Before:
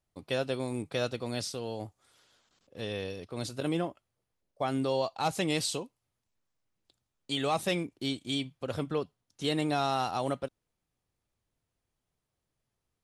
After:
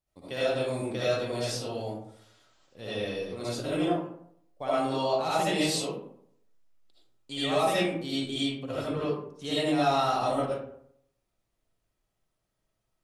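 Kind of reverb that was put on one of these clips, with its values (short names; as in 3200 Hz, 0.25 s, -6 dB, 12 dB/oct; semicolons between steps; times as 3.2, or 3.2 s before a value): digital reverb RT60 0.68 s, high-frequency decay 0.5×, pre-delay 35 ms, DRR -10 dB; gain -6.5 dB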